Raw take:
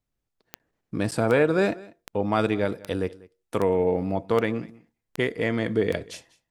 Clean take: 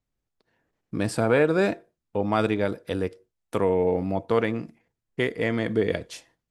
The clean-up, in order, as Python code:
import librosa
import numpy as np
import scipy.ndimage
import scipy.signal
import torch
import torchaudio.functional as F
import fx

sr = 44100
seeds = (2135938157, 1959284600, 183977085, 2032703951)

y = fx.fix_declick_ar(x, sr, threshold=10.0)
y = fx.fix_interpolate(y, sr, at_s=(0.59, 1.11), length_ms=7.9)
y = fx.fix_echo_inverse(y, sr, delay_ms=193, level_db=-22.0)